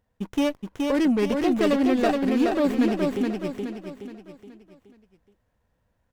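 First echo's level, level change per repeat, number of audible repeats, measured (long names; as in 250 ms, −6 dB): −3.5 dB, −7.5 dB, 5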